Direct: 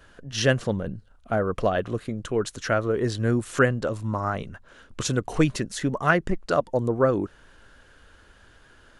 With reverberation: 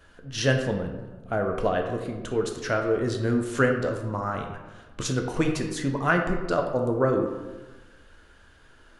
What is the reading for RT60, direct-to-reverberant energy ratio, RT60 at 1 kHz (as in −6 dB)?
1.2 s, 3.0 dB, 1.2 s